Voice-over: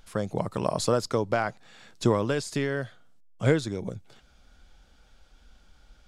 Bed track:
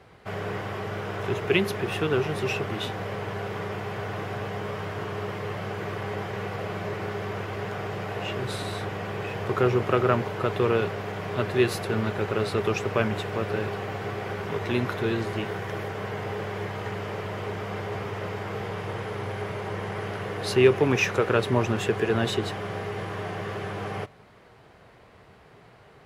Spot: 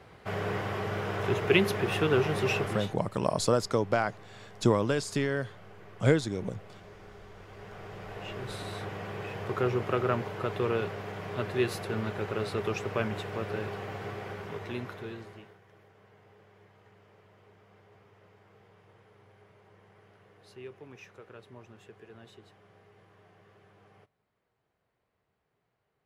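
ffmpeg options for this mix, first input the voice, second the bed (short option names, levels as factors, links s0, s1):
-filter_complex "[0:a]adelay=2600,volume=0.891[s0];[1:a]volume=4.22,afade=t=out:st=2.6:d=0.37:silence=0.11885,afade=t=in:st=7.36:d=1.46:silence=0.223872,afade=t=out:st=14.05:d=1.53:silence=0.0891251[s1];[s0][s1]amix=inputs=2:normalize=0"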